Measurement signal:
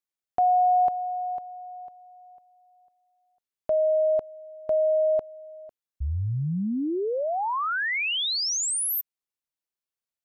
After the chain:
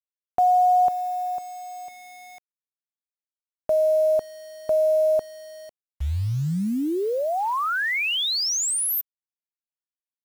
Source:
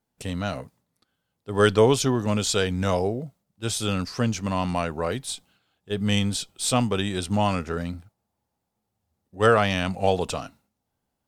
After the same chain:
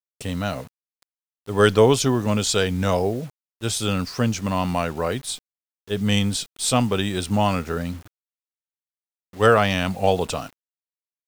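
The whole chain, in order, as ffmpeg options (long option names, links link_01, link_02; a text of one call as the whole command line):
ffmpeg -i in.wav -af "acrusher=bits=7:mix=0:aa=0.000001,volume=2.5dB" out.wav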